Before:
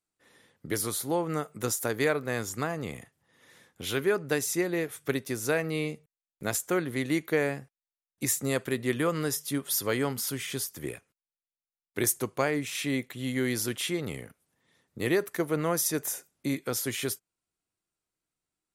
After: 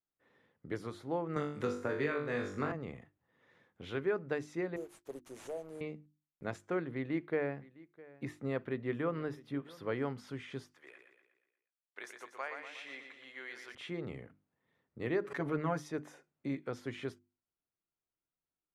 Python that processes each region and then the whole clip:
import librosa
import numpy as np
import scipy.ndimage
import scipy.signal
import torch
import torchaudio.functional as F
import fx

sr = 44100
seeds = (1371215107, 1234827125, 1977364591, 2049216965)

y = fx.chain(x, sr, fx.peak_eq(hz=750.0, db=-6.5, octaves=0.5),
    fx.room_flutter(wall_m=3.5, rt60_s=0.42),
    fx.band_squash(depth_pct=100), at=(1.36, 2.72))
y = fx.chain(y, sr, fx.cheby2_bandstop(low_hz=1200.0, high_hz=4100.0, order=4, stop_db=40),
    fx.differentiator(),
    fx.leveller(passes=5), at=(4.76, 5.81))
y = fx.chain(y, sr, fx.peak_eq(hz=7000.0, db=-9.5, octaves=1.0),
    fx.echo_single(ms=658, db=-21.0), at=(6.91, 10.02))
y = fx.chain(y, sr, fx.highpass(hz=1000.0, slope=12),
    fx.echo_feedback(ms=120, feedback_pct=51, wet_db=-6.5), at=(10.71, 13.75))
y = fx.chain(y, sr, fx.comb(ms=7.1, depth=0.79),
    fx.pre_swell(db_per_s=74.0), at=(15.24, 15.89))
y = scipy.signal.sosfilt(scipy.signal.bessel(2, 1800.0, 'lowpass', norm='mag', fs=sr, output='sos'), y)
y = fx.hum_notches(y, sr, base_hz=50, count=7)
y = y * 10.0 ** (-6.5 / 20.0)